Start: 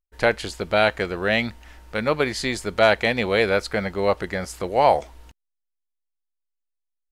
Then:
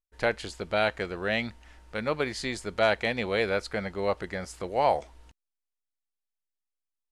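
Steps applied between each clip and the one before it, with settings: low-pass 11 kHz 24 dB/octave; trim -7 dB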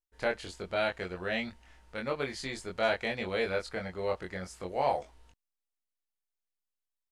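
doubling 22 ms -3 dB; trim -6.5 dB

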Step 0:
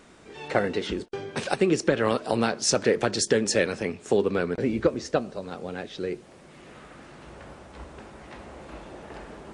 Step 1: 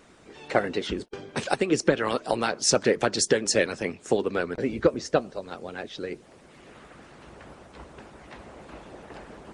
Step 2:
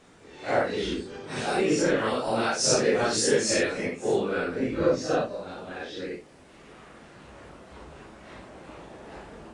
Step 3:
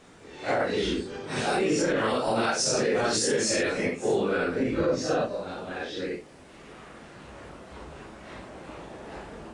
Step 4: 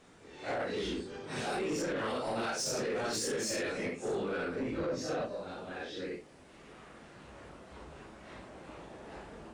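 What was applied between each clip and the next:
harmonic-percussive split harmonic -11 dB; trim +2 dB
phase randomisation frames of 200 ms
peak limiter -19 dBFS, peak gain reduction 9 dB; trim +2.5 dB
saturation -22 dBFS, distortion -15 dB; trim -6.5 dB

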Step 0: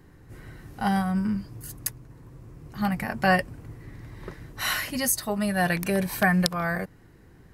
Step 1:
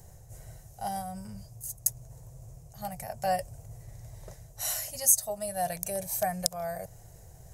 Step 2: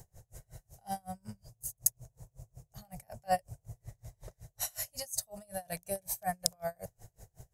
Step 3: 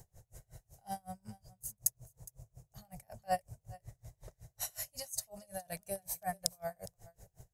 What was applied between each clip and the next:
FFT filter 130 Hz 0 dB, 280 Hz -22 dB, 660 Hz +7 dB, 1.1 kHz -12 dB, 1.7 kHz -12 dB, 2.8 kHz -8 dB, 4.5 kHz -2 dB, 6.5 kHz +13 dB, 11 kHz +9 dB; reverse; upward compressor, threshold -32 dBFS; reverse; trim -6.5 dB
logarithmic tremolo 5.4 Hz, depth 33 dB; trim +1.5 dB
delay 412 ms -21 dB; trim -3.5 dB

